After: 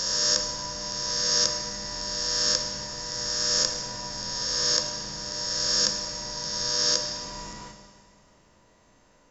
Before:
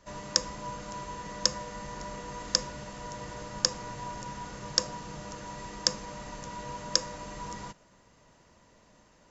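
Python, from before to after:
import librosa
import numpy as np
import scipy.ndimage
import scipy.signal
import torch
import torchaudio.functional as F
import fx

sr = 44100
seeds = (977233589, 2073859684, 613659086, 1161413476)

y = fx.spec_swells(x, sr, rise_s=2.55)
y = fx.rev_schroeder(y, sr, rt60_s=1.8, comb_ms=25, drr_db=5.5)
y = y * 10.0 ** (-4.0 / 20.0)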